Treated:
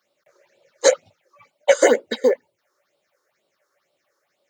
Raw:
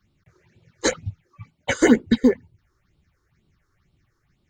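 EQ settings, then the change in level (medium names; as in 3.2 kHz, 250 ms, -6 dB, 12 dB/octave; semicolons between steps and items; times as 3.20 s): resonant high-pass 570 Hz, resonance Q 7.1; treble shelf 4.5 kHz +8 dB; -1.0 dB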